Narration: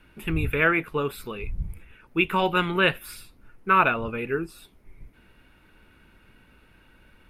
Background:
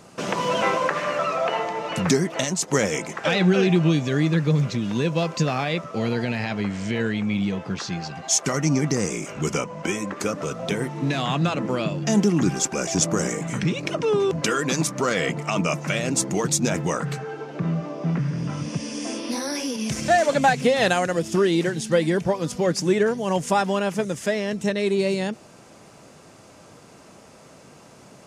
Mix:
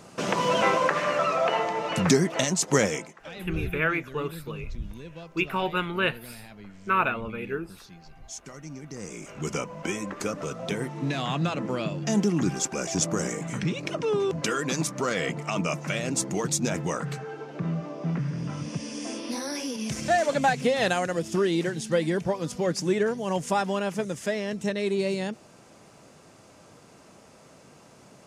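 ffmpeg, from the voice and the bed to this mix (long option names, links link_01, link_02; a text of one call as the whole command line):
ffmpeg -i stem1.wav -i stem2.wav -filter_complex "[0:a]adelay=3200,volume=-4.5dB[link_01];[1:a]volume=14.5dB,afade=type=out:start_time=2.81:duration=0.32:silence=0.112202,afade=type=in:start_time=8.87:duration=0.77:silence=0.177828[link_02];[link_01][link_02]amix=inputs=2:normalize=0" out.wav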